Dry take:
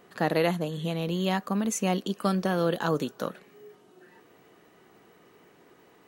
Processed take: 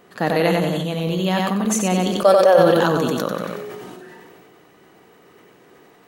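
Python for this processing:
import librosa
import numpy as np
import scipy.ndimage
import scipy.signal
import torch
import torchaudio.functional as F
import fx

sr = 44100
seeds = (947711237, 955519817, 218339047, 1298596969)

y = fx.highpass_res(x, sr, hz=550.0, q=6.1, at=(2.1, 2.57), fade=0.02)
y = fx.echo_feedback(y, sr, ms=92, feedback_pct=43, wet_db=-4)
y = fx.sustainer(y, sr, db_per_s=21.0)
y = y * 10.0 ** (4.5 / 20.0)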